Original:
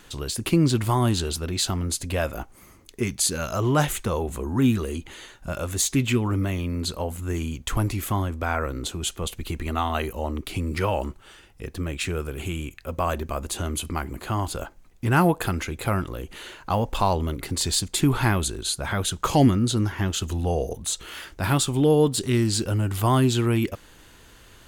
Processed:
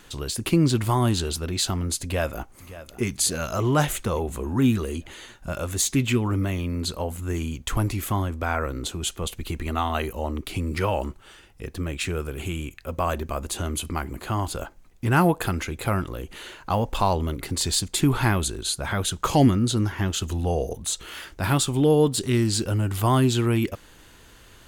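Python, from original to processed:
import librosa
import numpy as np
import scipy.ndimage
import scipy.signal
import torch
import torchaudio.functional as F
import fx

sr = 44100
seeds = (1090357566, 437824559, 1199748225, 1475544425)

y = fx.echo_throw(x, sr, start_s=2.01, length_s=1.04, ms=570, feedback_pct=55, wet_db=-15.5)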